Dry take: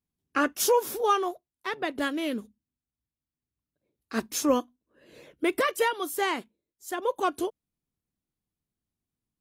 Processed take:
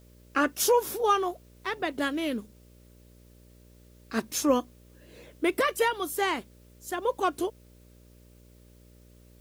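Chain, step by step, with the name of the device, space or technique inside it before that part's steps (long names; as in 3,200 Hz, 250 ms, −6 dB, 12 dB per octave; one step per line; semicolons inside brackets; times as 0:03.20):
video cassette with head-switching buzz (hum with harmonics 60 Hz, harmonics 10, −55 dBFS −5 dB per octave; white noise bed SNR 35 dB)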